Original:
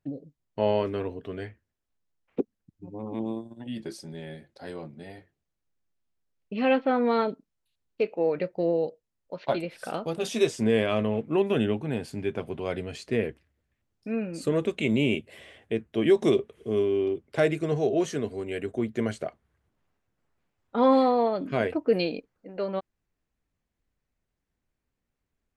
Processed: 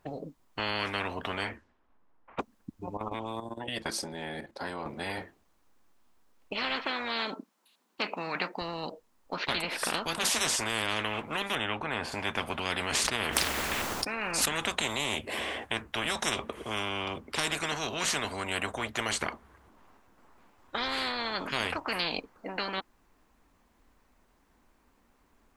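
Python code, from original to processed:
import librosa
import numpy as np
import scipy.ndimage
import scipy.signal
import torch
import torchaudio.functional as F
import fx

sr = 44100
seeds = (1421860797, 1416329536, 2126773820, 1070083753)

y = fx.env_lowpass(x, sr, base_hz=1600.0, full_db=-35.5, at=(1.42, 2.4), fade=0.02)
y = fx.level_steps(y, sr, step_db=12, at=(2.97, 4.86))
y = fx.brickwall_highpass(y, sr, low_hz=160.0, at=(6.85, 8.62))
y = fx.lowpass(y, sr, hz=1700.0, slope=6, at=(11.55, 12.12))
y = fx.sustainer(y, sr, db_per_s=24.0, at=(12.76, 14.5))
y = fx.graphic_eq(y, sr, hz=(125, 250, 1000), db=(-10, 6, 10))
y = fx.spectral_comp(y, sr, ratio=10.0)
y = y * librosa.db_to_amplitude(-4.0)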